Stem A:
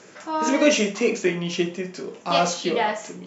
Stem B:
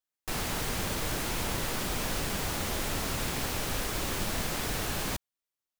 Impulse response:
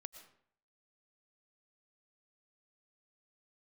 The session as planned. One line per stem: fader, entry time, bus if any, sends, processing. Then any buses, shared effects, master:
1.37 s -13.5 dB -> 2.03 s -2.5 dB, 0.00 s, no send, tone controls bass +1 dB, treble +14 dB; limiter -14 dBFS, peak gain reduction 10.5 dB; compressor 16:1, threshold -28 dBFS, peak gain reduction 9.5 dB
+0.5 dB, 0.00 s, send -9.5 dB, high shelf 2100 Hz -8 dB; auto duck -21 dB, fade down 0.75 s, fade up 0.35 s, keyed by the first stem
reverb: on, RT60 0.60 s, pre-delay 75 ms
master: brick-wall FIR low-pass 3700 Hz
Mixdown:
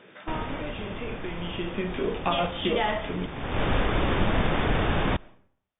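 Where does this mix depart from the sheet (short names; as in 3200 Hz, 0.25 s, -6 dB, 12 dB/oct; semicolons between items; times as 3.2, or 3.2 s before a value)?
stem A -13.5 dB -> -4.0 dB; stem B +0.5 dB -> +9.0 dB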